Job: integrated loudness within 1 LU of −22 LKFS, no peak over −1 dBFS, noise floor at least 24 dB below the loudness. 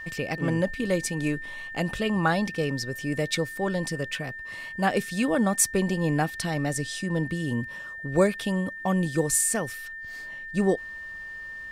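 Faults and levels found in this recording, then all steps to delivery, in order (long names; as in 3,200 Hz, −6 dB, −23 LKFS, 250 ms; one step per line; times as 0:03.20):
interfering tone 1,800 Hz; level of the tone −36 dBFS; integrated loudness −27.0 LKFS; sample peak −8.0 dBFS; target loudness −22.0 LKFS
→ notch filter 1,800 Hz, Q 30
level +5 dB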